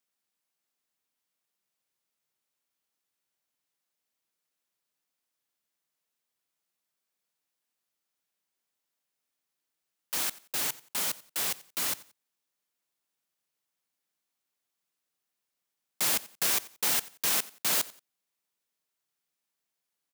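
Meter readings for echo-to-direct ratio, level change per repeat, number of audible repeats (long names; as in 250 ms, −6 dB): −19.5 dB, −11.0 dB, 2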